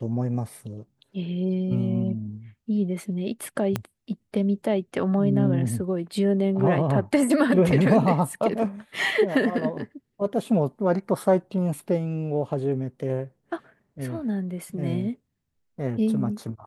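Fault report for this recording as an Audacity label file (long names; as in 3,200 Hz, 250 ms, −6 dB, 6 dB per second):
3.760000	3.760000	click −11 dBFS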